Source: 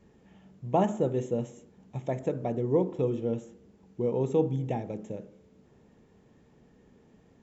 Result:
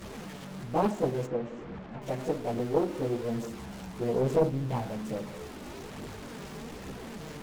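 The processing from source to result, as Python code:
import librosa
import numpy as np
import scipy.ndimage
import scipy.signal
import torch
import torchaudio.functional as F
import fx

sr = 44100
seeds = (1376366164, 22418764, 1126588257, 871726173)

y = x + 0.5 * 10.0 ** (-33.5 / 20.0) * np.sign(x)
y = fx.lowpass(y, sr, hz=2200.0, slope=12, at=(1.24, 2.01), fade=0.02)
y = fx.chorus_voices(y, sr, voices=2, hz=0.58, base_ms=17, depth_ms=3.7, mix_pct=65)
y = fx.doppler_dist(y, sr, depth_ms=0.7)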